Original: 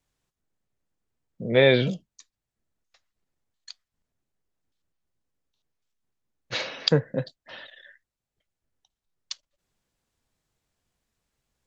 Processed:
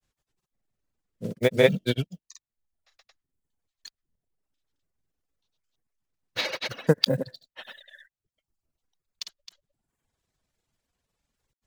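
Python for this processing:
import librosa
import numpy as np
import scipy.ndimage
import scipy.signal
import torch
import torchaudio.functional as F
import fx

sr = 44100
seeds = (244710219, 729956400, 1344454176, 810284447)

y = fx.block_float(x, sr, bits=5)
y = fx.granulator(y, sr, seeds[0], grain_ms=100.0, per_s=20.0, spray_ms=200.0, spread_st=0)
y = fx.dereverb_blind(y, sr, rt60_s=0.83)
y = F.gain(torch.from_numpy(y), 2.5).numpy()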